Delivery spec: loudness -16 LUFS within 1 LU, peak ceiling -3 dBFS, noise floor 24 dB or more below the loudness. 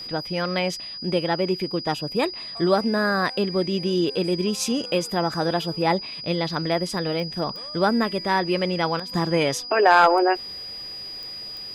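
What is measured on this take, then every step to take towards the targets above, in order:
clicks found 4; steady tone 4.9 kHz; tone level -33 dBFS; loudness -23.5 LUFS; peak level -5.5 dBFS; loudness target -16.0 LUFS
-> de-click; band-stop 4.9 kHz, Q 30; trim +7.5 dB; peak limiter -3 dBFS

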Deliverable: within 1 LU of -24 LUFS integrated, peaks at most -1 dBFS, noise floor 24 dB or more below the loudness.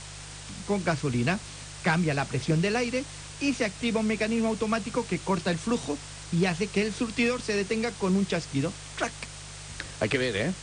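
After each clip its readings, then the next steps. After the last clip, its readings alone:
hum 50 Hz; highest harmonic 150 Hz; hum level -44 dBFS; noise floor -42 dBFS; noise floor target -52 dBFS; loudness -28.0 LUFS; peak level -13.5 dBFS; loudness target -24.0 LUFS
-> de-hum 50 Hz, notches 3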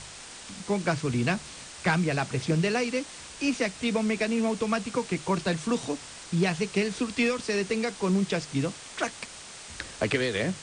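hum not found; noise floor -44 dBFS; noise floor target -52 dBFS
-> noise reduction 8 dB, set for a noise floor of -44 dBFS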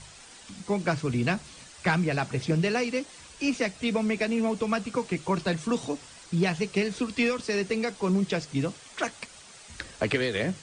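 noise floor -49 dBFS; noise floor target -53 dBFS
-> noise reduction 6 dB, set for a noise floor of -49 dBFS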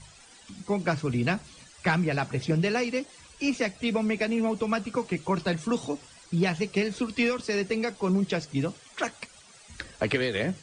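noise floor -53 dBFS; loudness -28.5 LUFS; peak level -14.0 dBFS; loudness target -24.0 LUFS
-> trim +4.5 dB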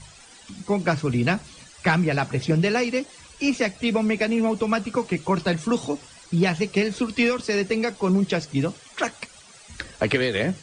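loudness -24.0 LUFS; peak level -9.5 dBFS; noise floor -48 dBFS

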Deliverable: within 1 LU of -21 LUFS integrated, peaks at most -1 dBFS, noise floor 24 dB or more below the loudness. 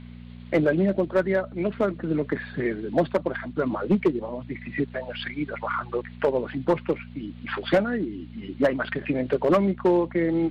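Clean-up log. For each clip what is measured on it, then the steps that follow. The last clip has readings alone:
clipped samples 0.5%; clipping level -13.5 dBFS; hum 60 Hz; highest harmonic 240 Hz; hum level -39 dBFS; loudness -26.0 LUFS; peak level -13.5 dBFS; loudness target -21.0 LUFS
-> clip repair -13.5 dBFS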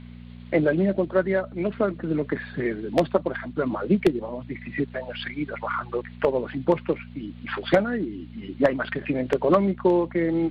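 clipped samples 0.0%; hum 60 Hz; highest harmonic 240 Hz; hum level -39 dBFS
-> de-hum 60 Hz, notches 4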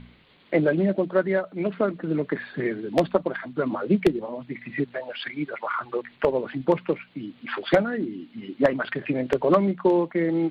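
hum not found; loudness -25.5 LUFS; peak level -4.5 dBFS; loudness target -21.0 LUFS
-> trim +4.5 dB; peak limiter -1 dBFS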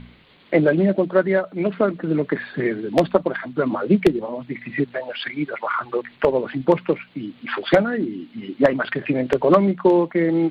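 loudness -21.0 LUFS; peak level -1.0 dBFS; noise floor -51 dBFS

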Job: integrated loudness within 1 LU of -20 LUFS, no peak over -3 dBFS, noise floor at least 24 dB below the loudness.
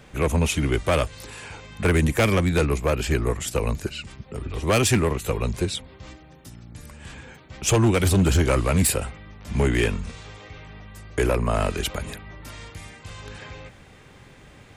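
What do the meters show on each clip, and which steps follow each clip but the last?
clipped samples 0.9%; clipping level -13.5 dBFS; loudness -23.0 LUFS; peak level -13.5 dBFS; loudness target -20.0 LUFS
-> clip repair -13.5 dBFS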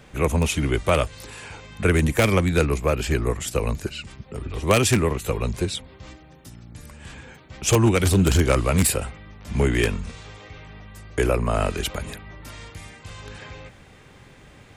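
clipped samples 0.0%; loudness -22.5 LUFS; peak level -4.5 dBFS; loudness target -20.0 LUFS
-> trim +2.5 dB; peak limiter -3 dBFS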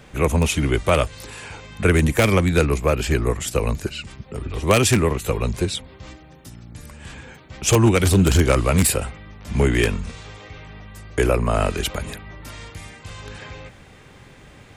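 loudness -20.0 LUFS; peak level -3.0 dBFS; noise floor -47 dBFS

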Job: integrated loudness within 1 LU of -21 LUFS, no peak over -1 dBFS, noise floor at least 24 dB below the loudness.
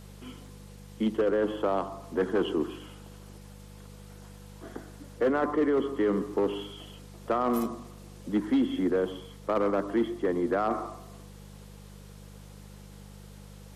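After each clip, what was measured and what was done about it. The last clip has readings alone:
clipped samples 0.8%; clipping level -19.0 dBFS; hum 50 Hz; highest harmonic 200 Hz; hum level -45 dBFS; loudness -29.0 LUFS; peak level -19.0 dBFS; loudness target -21.0 LUFS
-> clip repair -19 dBFS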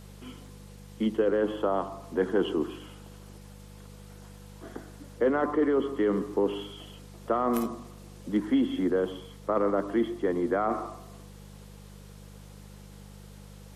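clipped samples 0.0%; hum 50 Hz; highest harmonic 200 Hz; hum level -45 dBFS
-> de-hum 50 Hz, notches 4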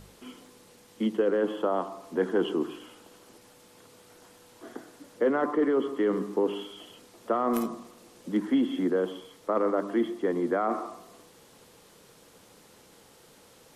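hum not found; loudness -28.5 LUFS; peak level -10.0 dBFS; loudness target -21.0 LUFS
-> trim +7.5 dB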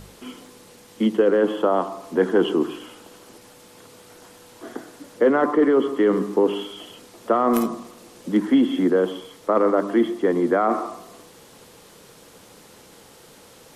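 loudness -21.0 LUFS; peak level -2.5 dBFS; noise floor -49 dBFS

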